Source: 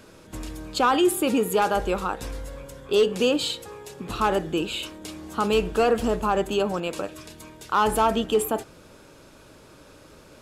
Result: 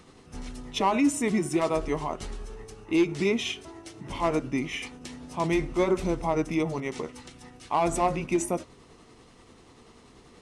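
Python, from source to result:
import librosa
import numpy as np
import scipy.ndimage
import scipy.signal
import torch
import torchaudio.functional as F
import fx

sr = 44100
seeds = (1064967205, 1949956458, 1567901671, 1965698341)

y = fx.pitch_heads(x, sr, semitones=-4.0)
y = y * librosa.db_to_amplitude(-2.5)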